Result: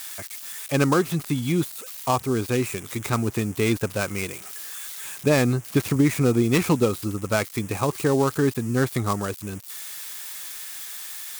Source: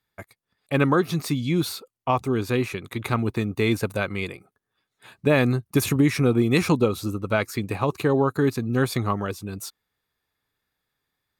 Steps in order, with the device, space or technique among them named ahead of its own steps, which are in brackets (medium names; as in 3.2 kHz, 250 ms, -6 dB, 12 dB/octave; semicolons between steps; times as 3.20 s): budget class-D amplifier (dead-time distortion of 0.12 ms; zero-crossing glitches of -21.5 dBFS)